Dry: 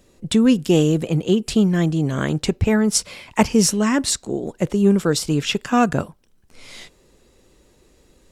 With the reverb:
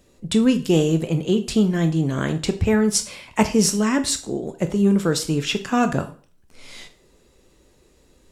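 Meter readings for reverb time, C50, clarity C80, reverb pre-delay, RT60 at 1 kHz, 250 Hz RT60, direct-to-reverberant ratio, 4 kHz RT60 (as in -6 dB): 0.40 s, 13.5 dB, 18.5 dB, 6 ms, 0.40 s, 0.40 s, 8.0 dB, 0.40 s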